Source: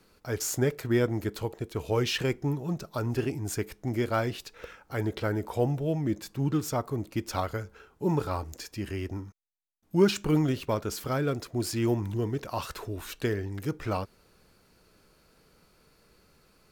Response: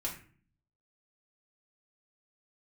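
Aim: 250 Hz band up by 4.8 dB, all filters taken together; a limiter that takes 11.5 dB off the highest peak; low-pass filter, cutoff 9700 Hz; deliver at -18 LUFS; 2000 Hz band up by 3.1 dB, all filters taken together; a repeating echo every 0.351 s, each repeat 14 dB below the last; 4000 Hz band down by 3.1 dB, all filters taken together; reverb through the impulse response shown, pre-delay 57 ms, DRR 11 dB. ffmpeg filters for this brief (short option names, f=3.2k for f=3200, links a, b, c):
-filter_complex "[0:a]lowpass=9.7k,equalizer=f=250:t=o:g=6.5,equalizer=f=2k:t=o:g=5.5,equalizer=f=4k:t=o:g=-6.5,alimiter=limit=-18.5dB:level=0:latency=1,aecho=1:1:351|702:0.2|0.0399,asplit=2[a][b];[1:a]atrim=start_sample=2205,adelay=57[c];[b][c]afir=irnorm=-1:irlink=0,volume=-13dB[d];[a][d]amix=inputs=2:normalize=0,volume=12dB"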